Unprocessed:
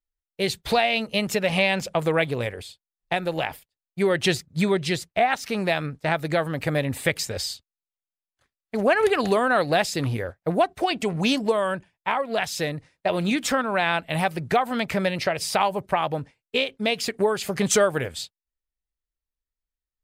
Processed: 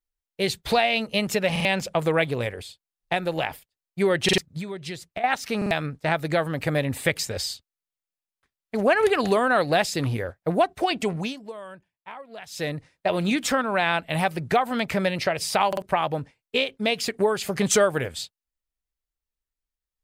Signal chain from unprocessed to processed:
0:04.38–0:05.24: downward compressor 12 to 1, threshold −30 dBFS, peak gain reduction 14 dB
0:11.10–0:12.70: duck −15.5 dB, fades 0.24 s
buffer that repeats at 0:01.51/0:04.24/0:05.57/0:08.29/0:15.68, samples 2,048, times 2

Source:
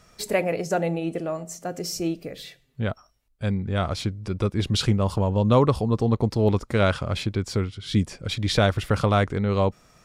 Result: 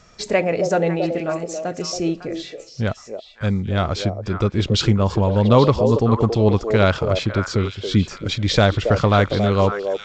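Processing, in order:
0:02.90–0:03.47: noise that follows the level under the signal 30 dB
echo through a band-pass that steps 276 ms, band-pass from 490 Hz, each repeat 1.4 octaves, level −3 dB
level +4.5 dB
G.722 64 kbit/s 16,000 Hz

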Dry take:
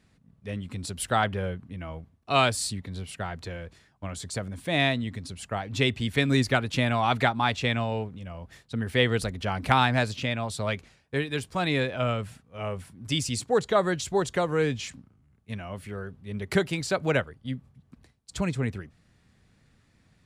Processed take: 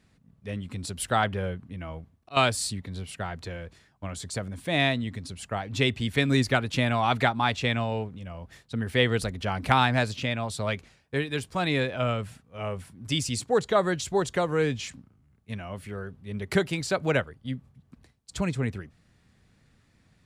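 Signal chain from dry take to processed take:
0:01.84–0:02.37: volume swells 245 ms

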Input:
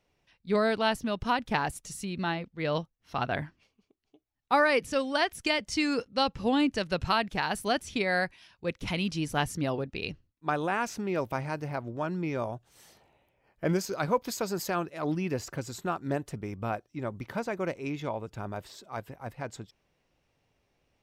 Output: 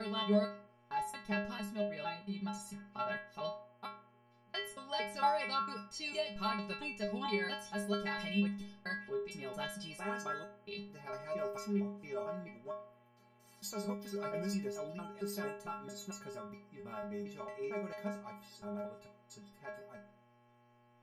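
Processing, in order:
slices reordered back to front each 227 ms, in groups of 4
hum with harmonics 120 Hz, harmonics 27, −48 dBFS −6 dB per octave
stiff-string resonator 200 Hz, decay 0.6 s, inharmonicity 0.008
level +7 dB

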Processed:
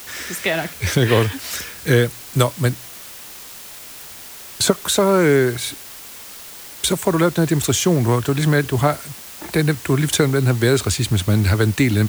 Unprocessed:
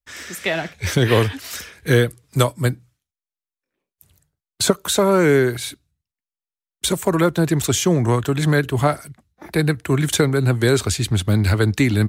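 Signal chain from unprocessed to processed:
in parallel at −2 dB: downward compressor, threshold −26 dBFS, peak gain reduction 15.5 dB
on the sum: bit-depth reduction 6 bits, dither triangular
level −1 dB

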